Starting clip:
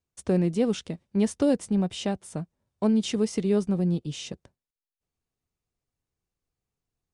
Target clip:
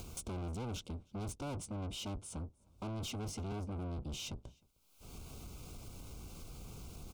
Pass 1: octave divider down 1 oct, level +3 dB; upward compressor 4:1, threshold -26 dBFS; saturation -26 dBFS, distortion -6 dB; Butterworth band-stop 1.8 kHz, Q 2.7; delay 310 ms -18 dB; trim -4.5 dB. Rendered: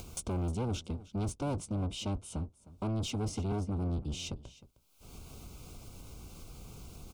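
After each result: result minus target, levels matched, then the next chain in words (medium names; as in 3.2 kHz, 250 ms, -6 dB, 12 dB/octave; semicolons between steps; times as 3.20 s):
echo-to-direct +10 dB; saturation: distortion -4 dB
octave divider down 1 oct, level +3 dB; upward compressor 4:1, threshold -26 dBFS; saturation -26 dBFS, distortion -6 dB; Butterworth band-stop 1.8 kHz, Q 2.7; delay 310 ms -28 dB; trim -4.5 dB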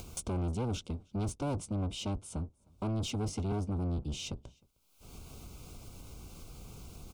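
saturation: distortion -4 dB
octave divider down 1 oct, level +3 dB; upward compressor 4:1, threshold -26 dBFS; saturation -34.5 dBFS, distortion -2 dB; Butterworth band-stop 1.8 kHz, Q 2.7; delay 310 ms -28 dB; trim -4.5 dB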